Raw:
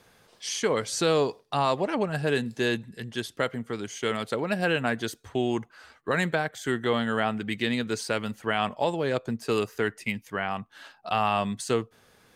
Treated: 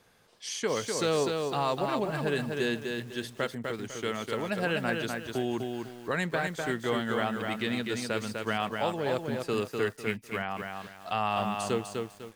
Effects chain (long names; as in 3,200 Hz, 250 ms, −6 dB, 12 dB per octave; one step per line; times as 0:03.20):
feedback echo at a low word length 250 ms, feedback 35%, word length 8 bits, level −4 dB
level −4.5 dB